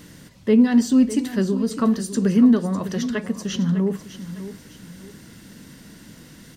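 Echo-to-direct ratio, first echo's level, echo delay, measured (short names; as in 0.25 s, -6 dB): -12.5 dB, -13.0 dB, 0.603 s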